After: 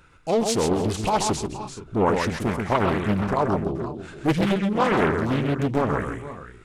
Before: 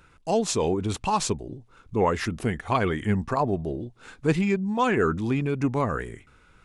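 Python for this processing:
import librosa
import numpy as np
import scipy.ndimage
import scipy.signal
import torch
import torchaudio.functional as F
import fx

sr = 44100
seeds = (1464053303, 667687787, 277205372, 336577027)

p1 = x + fx.echo_multitap(x, sr, ms=(132, 296, 473, 506), db=(-5.5, -19.0, -14.5, -19.0), dry=0)
p2 = fx.doppler_dist(p1, sr, depth_ms=0.91)
y = F.gain(torch.from_numpy(p2), 1.5).numpy()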